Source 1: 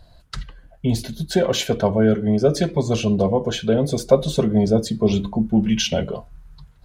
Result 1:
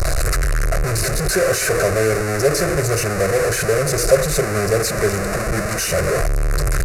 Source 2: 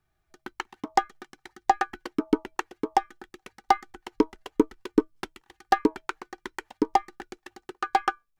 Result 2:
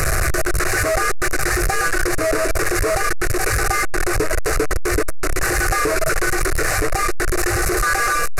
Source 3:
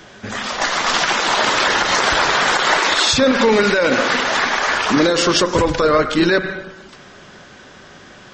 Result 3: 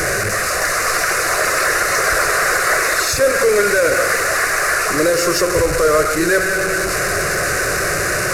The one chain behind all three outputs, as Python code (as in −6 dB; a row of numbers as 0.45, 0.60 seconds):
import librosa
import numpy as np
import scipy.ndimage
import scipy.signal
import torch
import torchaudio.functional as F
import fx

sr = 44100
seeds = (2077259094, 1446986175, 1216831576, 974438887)

p1 = fx.delta_mod(x, sr, bps=64000, step_db=-12.0)
p2 = fx.fixed_phaser(p1, sr, hz=890.0, stages=6)
p3 = 10.0 ** (-19.0 / 20.0) * np.tanh(p2 / 10.0 ** (-19.0 / 20.0))
y = p2 + (p3 * librosa.db_to_amplitude(-6.0))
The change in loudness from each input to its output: +1.5, +8.5, 0.0 LU